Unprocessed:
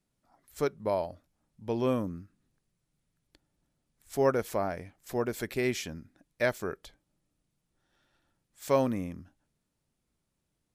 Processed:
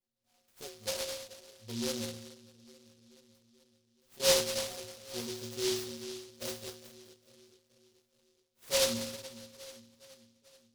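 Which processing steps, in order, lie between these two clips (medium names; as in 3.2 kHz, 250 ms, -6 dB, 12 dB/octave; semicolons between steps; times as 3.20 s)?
peaking EQ 510 Hz +9.5 dB 0.51 oct; two-band feedback delay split 500 Hz, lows 429 ms, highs 201 ms, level -15.5 dB; in parallel at -2.5 dB: peak limiter -24.5 dBFS, peak gain reduction 16 dB; 2.20–4.20 s: on the sum: compression 2.5:1, threshold -42 dBFS, peak gain reduction 13.5 dB; inharmonic resonator 110 Hz, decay 0.85 s, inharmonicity 0.03; delay time shaken by noise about 4.4 kHz, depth 0.26 ms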